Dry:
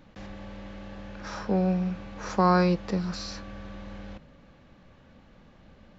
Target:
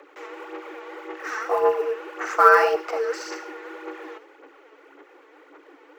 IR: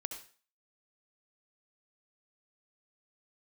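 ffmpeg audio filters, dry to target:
-filter_complex "[0:a]equalizer=f=125:t=o:w=1:g=4,equalizer=f=1k:t=o:w=1:g=9,equalizer=f=2k:t=o:w=1:g=6,equalizer=f=4k:t=o:w=1:g=-7,afreqshift=280,aphaser=in_gain=1:out_gain=1:delay=4.6:decay=0.56:speed=1.8:type=sinusoidal,asplit=2[a][b];[b]aderivative[c];[1:a]atrim=start_sample=2205[d];[c][d]afir=irnorm=-1:irlink=0,volume=1.5dB[e];[a][e]amix=inputs=2:normalize=0,volume=-1.5dB"

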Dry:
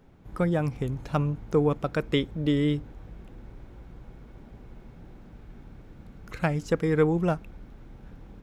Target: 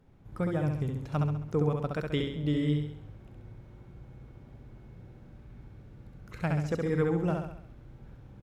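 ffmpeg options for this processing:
-af "equalizer=f=110:w=1.1:g=6,aecho=1:1:67|134|201|268|335|402:0.668|0.327|0.16|0.0786|0.0385|0.0189,volume=-7.5dB" -ar 48000 -c:a libvorbis -b:a 192k

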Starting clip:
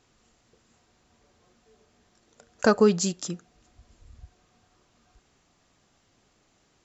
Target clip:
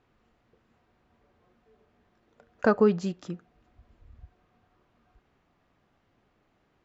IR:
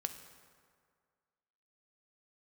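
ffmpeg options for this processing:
-af "lowpass=2.3k,volume=-2dB"

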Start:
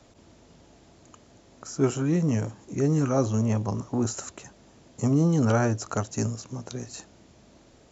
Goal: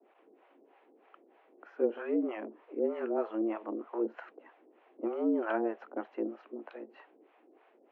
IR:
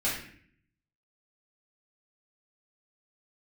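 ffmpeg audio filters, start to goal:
-filter_complex "[0:a]highpass=f=170:t=q:w=0.5412,highpass=f=170:t=q:w=1.307,lowpass=f=2.6k:t=q:w=0.5176,lowpass=f=2.6k:t=q:w=0.7071,lowpass=f=2.6k:t=q:w=1.932,afreqshift=110,acrossover=split=570[a][b];[a]aeval=exprs='val(0)*(1-1/2+1/2*cos(2*PI*3.2*n/s))':c=same[c];[b]aeval=exprs='val(0)*(1-1/2-1/2*cos(2*PI*3.2*n/s))':c=same[d];[c][d]amix=inputs=2:normalize=0,volume=-1.5dB"

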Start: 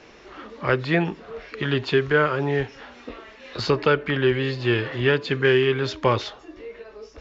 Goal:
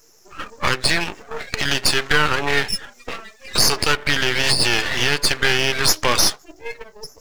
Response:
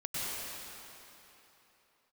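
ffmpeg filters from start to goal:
-af "agate=range=-6dB:threshold=-38dB:ratio=16:detection=peak,afftdn=nr=31:nf=-43,aderivative,acompressor=threshold=-47dB:ratio=2.5,aexciter=amount=13.5:drive=7:freq=5.5k,aeval=exprs='max(val(0),0)':c=same,alimiter=level_in=34.5dB:limit=-1dB:release=50:level=0:latency=1,volume=-1dB"

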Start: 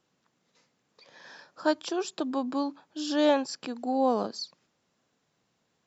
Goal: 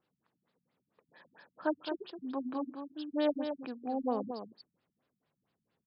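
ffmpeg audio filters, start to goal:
-filter_complex "[0:a]acrusher=bits=9:mode=log:mix=0:aa=0.000001,asplit=2[a][b];[b]aecho=0:1:215:0.398[c];[a][c]amix=inputs=2:normalize=0,afftfilt=real='re*lt(b*sr/1024,220*pow(5400/220,0.5+0.5*sin(2*PI*4.4*pts/sr)))':imag='im*lt(b*sr/1024,220*pow(5400/220,0.5+0.5*sin(2*PI*4.4*pts/sr)))':win_size=1024:overlap=0.75,volume=-6dB"

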